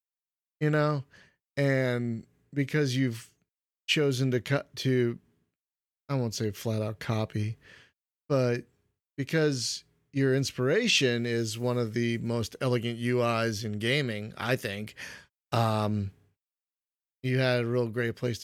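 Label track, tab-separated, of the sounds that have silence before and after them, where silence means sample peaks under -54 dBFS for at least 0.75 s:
6.090000	16.140000	sound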